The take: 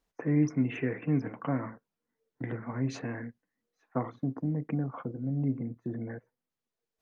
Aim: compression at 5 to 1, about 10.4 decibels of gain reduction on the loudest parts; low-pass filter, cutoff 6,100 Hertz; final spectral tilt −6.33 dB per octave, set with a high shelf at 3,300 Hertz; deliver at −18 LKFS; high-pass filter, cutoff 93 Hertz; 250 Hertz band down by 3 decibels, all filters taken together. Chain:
high-pass filter 93 Hz
low-pass filter 6,100 Hz
parametric band 250 Hz −3.5 dB
high-shelf EQ 3,300 Hz −7.5 dB
downward compressor 5 to 1, threshold −35 dBFS
level +23.5 dB

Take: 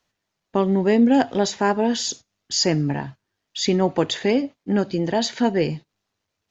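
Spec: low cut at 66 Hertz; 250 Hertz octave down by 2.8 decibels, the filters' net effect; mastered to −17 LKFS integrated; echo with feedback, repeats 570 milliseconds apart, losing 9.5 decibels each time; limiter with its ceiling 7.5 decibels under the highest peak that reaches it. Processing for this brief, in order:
high-pass filter 66 Hz
parametric band 250 Hz −3.5 dB
brickwall limiter −14.5 dBFS
repeating echo 570 ms, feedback 33%, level −9.5 dB
level +8.5 dB

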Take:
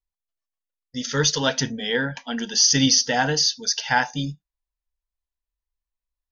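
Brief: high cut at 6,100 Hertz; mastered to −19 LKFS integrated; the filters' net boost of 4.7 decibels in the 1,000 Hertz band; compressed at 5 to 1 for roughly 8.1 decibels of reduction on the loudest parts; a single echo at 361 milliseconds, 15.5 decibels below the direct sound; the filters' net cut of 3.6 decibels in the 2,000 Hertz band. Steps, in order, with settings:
low-pass filter 6,100 Hz
parametric band 1,000 Hz +8 dB
parametric band 2,000 Hz −8.5 dB
downward compressor 5 to 1, threshold −21 dBFS
single-tap delay 361 ms −15.5 dB
level +6.5 dB

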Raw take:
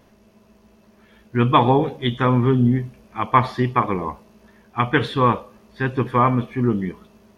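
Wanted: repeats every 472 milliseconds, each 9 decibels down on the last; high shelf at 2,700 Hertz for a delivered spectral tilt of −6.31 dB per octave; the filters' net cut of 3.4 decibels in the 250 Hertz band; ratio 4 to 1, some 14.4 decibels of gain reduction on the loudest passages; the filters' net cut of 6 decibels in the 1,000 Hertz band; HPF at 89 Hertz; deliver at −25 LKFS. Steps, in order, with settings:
high-pass filter 89 Hz
parametric band 250 Hz −3.5 dB
parametric band 1,000 Hz −5.5 dB
high-shelf EQ 2,700 Hz −8.5 dB
downward compressor 4 to 1, threshold −33 dBFS
repeating echo 472 ms, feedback 35%, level −9 dB
level +11 dB

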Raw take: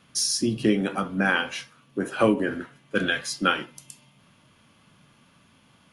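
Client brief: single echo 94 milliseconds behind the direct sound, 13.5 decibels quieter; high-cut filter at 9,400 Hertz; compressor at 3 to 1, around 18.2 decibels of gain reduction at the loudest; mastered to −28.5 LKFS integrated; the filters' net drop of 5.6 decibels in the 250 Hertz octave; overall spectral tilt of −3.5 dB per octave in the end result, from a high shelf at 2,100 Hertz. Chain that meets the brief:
low-pass filter 9,400 Hz
parametric band 250 Hz −7.5 dB
high-shelf EQ 2,100 Hz −7 dB
downward compressor 3 to 1, threshold −44 dBFS
single-tap delay 94 ms −13.5 dB
level +15 dB

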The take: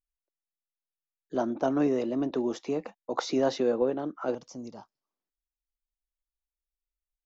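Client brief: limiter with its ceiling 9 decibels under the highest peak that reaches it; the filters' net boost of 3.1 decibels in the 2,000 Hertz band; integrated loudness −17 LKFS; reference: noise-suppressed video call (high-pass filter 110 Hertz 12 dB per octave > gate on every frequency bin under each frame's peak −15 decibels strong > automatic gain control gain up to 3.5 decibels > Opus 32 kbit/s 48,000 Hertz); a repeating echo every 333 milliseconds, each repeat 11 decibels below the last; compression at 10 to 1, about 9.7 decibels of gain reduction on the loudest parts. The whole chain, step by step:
parametric band 2,000 Hz +4.5 dB
downward compressor 10 to 1, threshold −30 dBFS
brickwall limiter −27.5 dBFS
high-pass filter 110 Hz 12 dB per octave
repeating echo 333 ms, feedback 28%, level −11 dB
gate on every frequency bin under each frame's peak −15 dB strong
automatic gain control gain up to 3.5 dB
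level +21.5 dB
Opus 32 kbit/s 48,000 Hz

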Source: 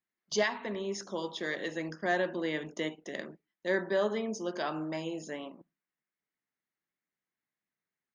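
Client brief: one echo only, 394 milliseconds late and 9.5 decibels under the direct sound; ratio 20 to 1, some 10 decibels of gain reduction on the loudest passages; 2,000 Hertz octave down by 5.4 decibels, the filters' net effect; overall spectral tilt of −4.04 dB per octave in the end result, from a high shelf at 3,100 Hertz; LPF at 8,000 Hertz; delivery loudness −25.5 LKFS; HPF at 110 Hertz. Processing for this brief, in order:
high-pass filter 110 Hz
low-pass filter 8,000 Hz
parametric band 2,000 Hz −5 dB
high-shelf EQ 3,100 Hz −4.5 dB
downward compressor 20 to 1, threshold −34 dBFS
single-tap delay 394 ms −9.5 dB
level +14.5 dB

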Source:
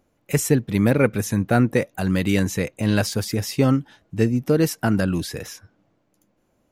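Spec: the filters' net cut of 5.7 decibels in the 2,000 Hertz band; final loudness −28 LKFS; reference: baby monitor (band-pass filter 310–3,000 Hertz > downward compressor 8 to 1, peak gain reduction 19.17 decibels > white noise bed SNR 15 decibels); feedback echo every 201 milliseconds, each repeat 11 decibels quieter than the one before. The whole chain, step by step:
band-pass filter 310–3,000 Hz
parametric band 2,000 Hz −7 dB
repeating echo 201 ms, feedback 28%, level −11 dB
downward compressor 8 to 1, threshold −34 dBFS
white noise bed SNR 15 dB
level +11 dB

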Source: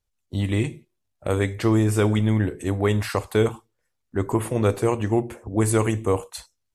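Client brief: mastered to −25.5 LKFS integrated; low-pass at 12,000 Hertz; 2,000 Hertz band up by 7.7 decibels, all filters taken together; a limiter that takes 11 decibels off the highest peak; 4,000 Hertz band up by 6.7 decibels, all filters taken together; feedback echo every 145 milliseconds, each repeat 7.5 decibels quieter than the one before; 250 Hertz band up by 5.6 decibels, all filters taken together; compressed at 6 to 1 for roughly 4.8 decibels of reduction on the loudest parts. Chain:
low-pass filter 12,000 Hz
parametric band 250 Hz +7.5 dB
parametric band 2,000 Hz +8 dB
parametric band 4,000 Hz +5.5 dB
downward compressor 6 to 1, threshold −16 dBFS
brickwall limiter −16.5 dBFS
repeating echo 145 ms, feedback 42%, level −7.5 dB
level +1.5 dB

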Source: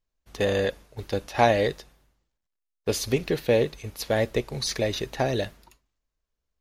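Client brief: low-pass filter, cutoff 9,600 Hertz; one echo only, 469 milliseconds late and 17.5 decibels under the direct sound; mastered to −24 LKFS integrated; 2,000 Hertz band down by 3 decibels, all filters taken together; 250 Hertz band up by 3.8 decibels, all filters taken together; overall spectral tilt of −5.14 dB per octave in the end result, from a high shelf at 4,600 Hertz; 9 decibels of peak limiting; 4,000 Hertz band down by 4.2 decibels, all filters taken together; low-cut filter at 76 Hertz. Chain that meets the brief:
high-pass filter 76 Hz
low-pass filter 9,600 Hz
parametric band 250 Hz +5 dB
parametric band 2,000 Hz −3 dB
parametric band 4,000 Hz −6.5 dB
high-shelf EQ 4,600 Hz +4.5 dB
brickwall limiter −13.5 dBFS
single-tap delay 469 ms −17.5 dB
level +3.5 dB

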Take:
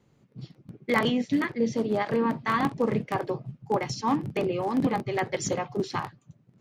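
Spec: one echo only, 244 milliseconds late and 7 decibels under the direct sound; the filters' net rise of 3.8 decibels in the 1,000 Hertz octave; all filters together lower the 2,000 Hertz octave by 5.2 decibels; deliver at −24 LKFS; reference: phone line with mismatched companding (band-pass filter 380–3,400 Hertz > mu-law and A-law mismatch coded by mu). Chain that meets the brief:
band-pass filter 380–3,400 Hz
parametric band 1,000 Hz +6.5 dB
parametric band 2,000 Hz −7.5 dB
single-tap delay 244 ms −7 dB
mu-law and A-law mismatch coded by mu
level +3.5 dB

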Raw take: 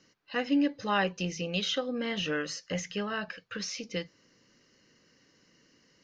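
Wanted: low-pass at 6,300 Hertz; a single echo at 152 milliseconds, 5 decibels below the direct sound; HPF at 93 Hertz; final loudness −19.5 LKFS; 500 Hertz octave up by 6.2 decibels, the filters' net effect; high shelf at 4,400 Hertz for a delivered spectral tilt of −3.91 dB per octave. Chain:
high-pass filter 93 Hz
low-pass filter 6,300 Hz
parametric band 500 Hz +7 dB
high-shelf EQ 4,400 Hz −9 dB
single-tap delay 152 ms −5 dB
level +9.5 dB

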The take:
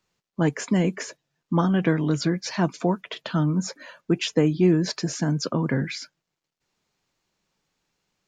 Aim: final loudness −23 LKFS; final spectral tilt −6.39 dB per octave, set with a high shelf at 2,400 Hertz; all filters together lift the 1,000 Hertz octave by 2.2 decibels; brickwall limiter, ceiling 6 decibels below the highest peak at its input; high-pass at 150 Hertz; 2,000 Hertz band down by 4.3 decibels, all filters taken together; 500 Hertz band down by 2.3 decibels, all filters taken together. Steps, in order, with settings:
high-pass filter 150 Hz
parametric band 500 Hz −4 dB
parametric band 1,000 Hz +6 dB
parametric band 2,000 Hz −5 dB
high-shelf EQ 2,400 Hz −5.5 dB
level +4.5 dB
brickwall limiter −11 dBFS

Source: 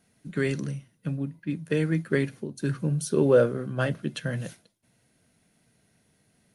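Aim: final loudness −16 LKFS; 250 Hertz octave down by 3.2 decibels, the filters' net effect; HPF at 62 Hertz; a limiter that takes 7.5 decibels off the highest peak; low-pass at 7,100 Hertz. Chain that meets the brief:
high-pass filter 62 Hz
low-pass filter 7,100 Hz
parametric band 250 Hz −4.5 dB
level +15.5 dB
brickwall limiter −2 dBFS

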